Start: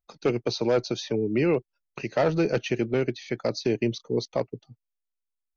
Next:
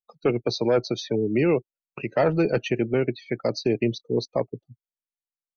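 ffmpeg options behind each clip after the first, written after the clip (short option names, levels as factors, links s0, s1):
-af "afftdn=nr=29:nf=-39,volume=1.26"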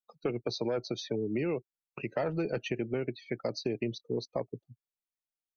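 -af "acompressor=threshold=0.0708:ratio=4,volume=0.531"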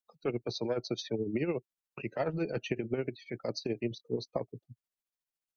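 -af "tremolo=f=14:d=0.62,volume=1.26"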